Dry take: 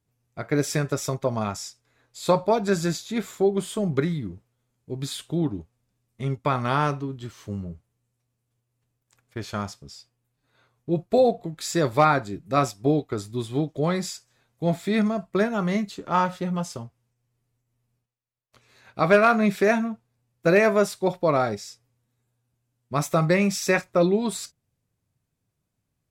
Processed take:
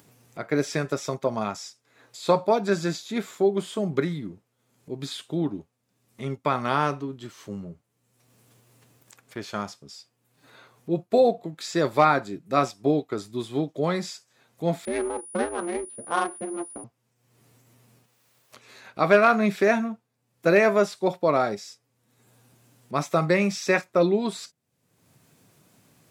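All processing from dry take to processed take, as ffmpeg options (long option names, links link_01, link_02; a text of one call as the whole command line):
ffmpeg -i in.wav -filter_complex "[0:a]asettb=1/sr,asplit=3[link_01][link_02][link_03];[link_01]atrim=end=14.854[link_04];[link_02]atrim=start=14.85:end=16.84,asetpts=PTS-STARTPTS,afade=type=in:duration=0.004:curve=qsin,afade=type=out:start_time=1.986:duration=0.004:curve=qsin,aeval=exprs='val(0)*sin(2*PI*170*n/s)':channel_layout=same,adynamicsmooth=sensitivity=2.5:basefreq=870,aeval=exprs='val(0)+0.0316*sin(2*PI*9700*n/s)':channel_layout=same[link_05];[link_03]atrim=start=16.836[link_06];[link_04][link_05]acrossfade=duration=0.004:curve1=hsin:curve2=qsin[link_07];[link_07][link_06]acrossfade=duration=0.004:curve1=qsin:curve2=hsin,acrossover=split=6100[link_08][link_09];[link_09]acompressor=threshold=-48dB:ratio=4:attack=1:release=60[link_10];[link_08][link_10]amix=inputs=2:normalize=0,highpass=180,acompressor=mode=upward:threshold=-40dB:ratio=2.5" out.wav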